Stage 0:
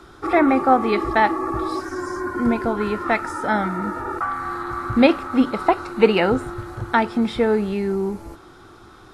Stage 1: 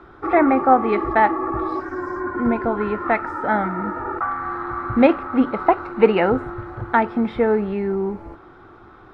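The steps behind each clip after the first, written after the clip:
drawn EQ curve 190 Hz 0 dB, 770 Hz +3 dB, 2,100 Hz 0 dB, 8,000 Hz −24 dB
level −1 dB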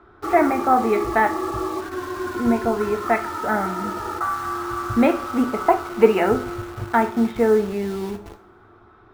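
in parallel at −5 dB: bit reduction 5 bits
on the sum: coupled-rooms reverb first 0.33 s, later 1.7 s, from −22 dB, DRR 5 dB
level −6.5 dB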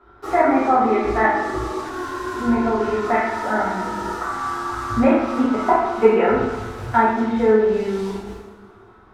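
treble cut that deepens with the level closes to 2,300 Hz, closed at −12 dBFS
coupled-rooms reverb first 0.76 s, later 2.4 s, from −18 dB, DRR −9 dB
level −7 dB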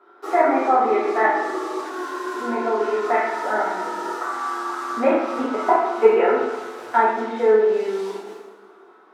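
high-pass filter 330 Hz 24 dB per octave
low-shelf EQ 470 Hz +4 dB
level −1.5 dB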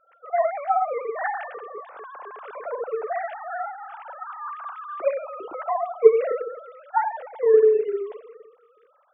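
three sine waves on the formant tracks
level −4 dB

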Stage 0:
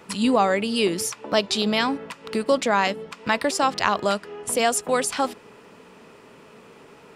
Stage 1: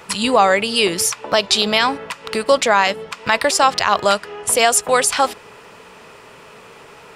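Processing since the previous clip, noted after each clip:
parametric band 250 Hz −11 dB 1.5 octaves
boost into a limiter +10.5 dB
level −1 dB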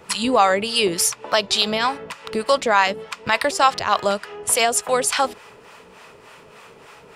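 two-band tremolo in antiphase 3.4 Hz, depth 70%, crossover 610 Hz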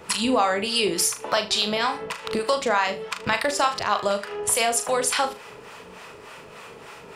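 downward compressor 2 to 1, threshold −26 dBFS, peak gain reduction 9.5 dB
on a send: flutter between parallel walls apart 6.6 metres, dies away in 0.28 s
on the sum: level +2 dB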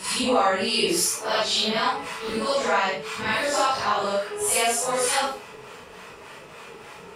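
random phases in long frames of 200 ms

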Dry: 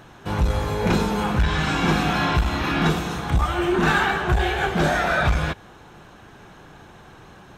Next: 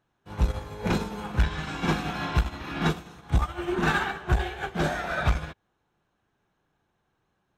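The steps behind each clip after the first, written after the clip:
expander for the loud parts 2.5 to 1, over −34 dBFS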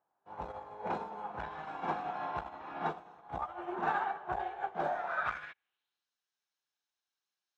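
band-pass filter sweep 790 Hz → 5,200 Hz, 0:04.97–0:06.07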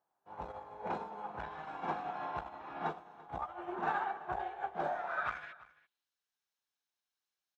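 single-tap delay 339 ms −20 dB
level −2 dB

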